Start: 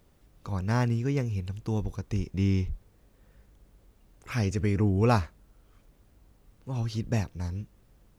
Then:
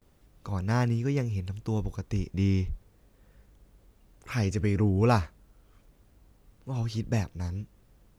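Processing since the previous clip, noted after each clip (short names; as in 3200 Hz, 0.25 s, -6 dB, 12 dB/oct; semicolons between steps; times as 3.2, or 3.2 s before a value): gate with hold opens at -53 dBFS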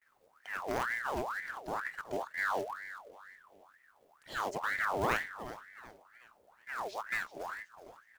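short-mantissa float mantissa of 2-bit; feedback echo 0.371 s, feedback 37%, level -13 dB; ring modulator with a swept carrier 1200 Hz, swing 60%, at 2.1 Hz; gain -6 dB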